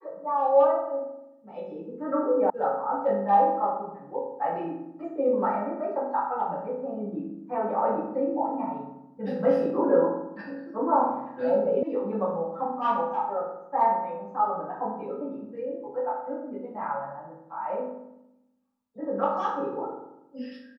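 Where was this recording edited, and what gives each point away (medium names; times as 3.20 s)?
2.50 s: sound stops dead
11.83 s: sound stops dead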